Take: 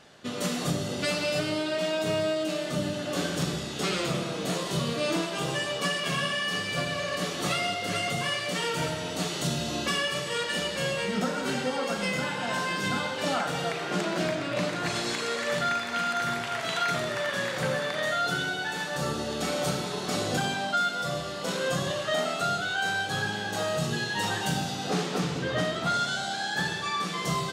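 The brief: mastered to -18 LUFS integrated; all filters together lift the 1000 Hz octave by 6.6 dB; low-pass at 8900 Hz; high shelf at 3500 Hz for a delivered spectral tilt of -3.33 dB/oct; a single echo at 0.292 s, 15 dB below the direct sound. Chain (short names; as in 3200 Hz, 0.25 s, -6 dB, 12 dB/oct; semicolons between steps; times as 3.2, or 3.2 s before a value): LPF 8900 Hz; bell 1000 Hz +9 dB; high shelf 3500 Hz +3.5 dB; echo 0.292 s -15 dB; gain +7 dB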